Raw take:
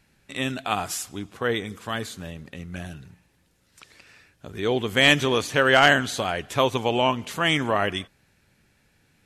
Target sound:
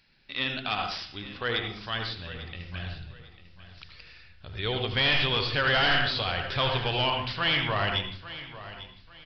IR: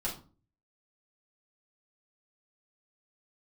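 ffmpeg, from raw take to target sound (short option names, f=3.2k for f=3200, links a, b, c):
-filter_complex "[0:a]asplit=2[a][b];[1:a]atrim=start_sample=2205,lowpass=3.5k,adelay=74[c];[b][c]afir=irnorm=-1:irlink=0,volume=-8.5dB[d];[a][d]amix=inputs=2:normalize=0,asubboost=boost=11.5:cutoff=73,crystalizer=i=7:c=0,volume=12dB,asoftclip=hard,volume=-12dB,aresample=11025,aresample=44100,asplit=2[e][f];[f]aecho=0:1:847|1694|2541:0.178|0.0533|0.016[g];[e][g]amix=inputs=2:normalize=0,volume=-8dB"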